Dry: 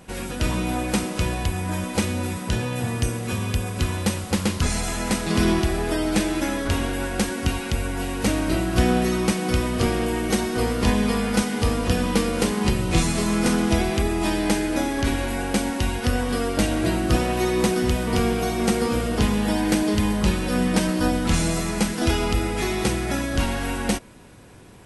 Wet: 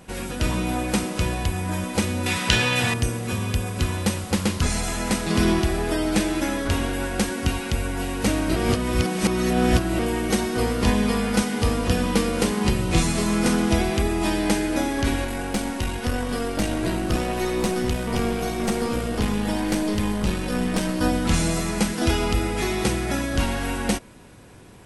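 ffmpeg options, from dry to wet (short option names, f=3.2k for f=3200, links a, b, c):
-filter_complex "[0:a]asettb=1/sr,asplit=3[a][b][c];[a]atrim=end=2.264[d];[b]atrim=start=2.26:end=2.94,asetpts=PTS-STARTPTS,afade=t=in:d=0.004:c=qsin,afade=t=out:st=0.676:d=0.004:c=qsin,equalizer=f=3k:w=0.38:g=14.5[e];[c]atrim=start=2.936[f];[d][e]acrossfade=d=0.004:c1=hsin:c2=qsin[g];[g][f]acrossfade=d=0.004:c1=qsin:c2=hsin,asettb=1/sr,asplit=3[h][i][j];[h]atrim=end=15.244[k];[i]atrim=start=15.24:end=21.01,asetpts=PTS-STARTPTS,afade=t=in:d=0.004:c=qsin,afade=t=out:st=5.766:d=0.004:c=qsin,aeval=exprs='(tanh(5.62*val(0)+0.5)-tanh(0.5))/5.62':c=same[l];[j]atrim=start=21.006[m];[k][l]acrossfade=d=0.004:c1=hsin:c2=qsin[n];[n][m]acrossfade=d=0.004:c1=qsin:c2=hsin,asplit=3[o][p][q];[o]atrim=end=8.562[r];[p]atrim=start=8.558:end=9.992,asetpts=PTS-STARTPTS,areverse[s];[q]atrim=start=9.988[t];[r][s]acrossfade=d=0.004:c1=hsin:c2=hsin[u];[u][t]acrossfade=d=0.004:c1=hsin:c2=hsin"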